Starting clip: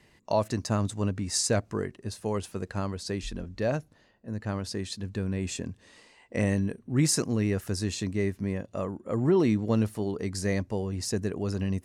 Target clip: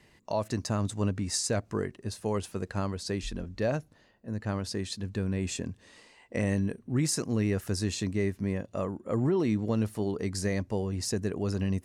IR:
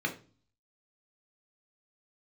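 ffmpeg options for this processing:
-af "alimiter=limit=0.112:level=0:latency=1:release=203"

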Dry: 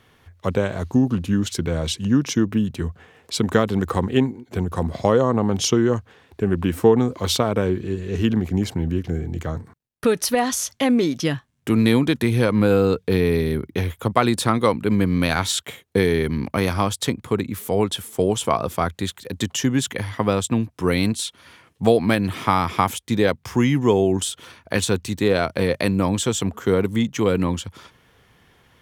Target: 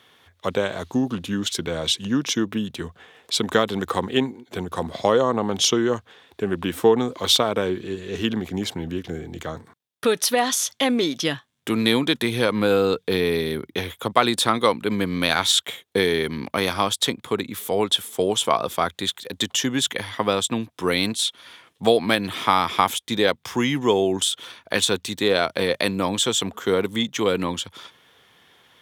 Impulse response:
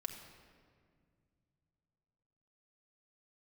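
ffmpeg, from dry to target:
-af "highpass=f=420:p=1,equalizer=f=3500:w=4.5:g=8,volume=1.19"

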